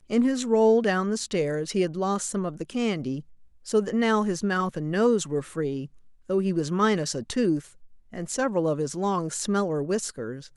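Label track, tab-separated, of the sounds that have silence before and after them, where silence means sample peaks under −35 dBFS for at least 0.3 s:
3.670000	5.860000	sound
6.300000	7.600000	sound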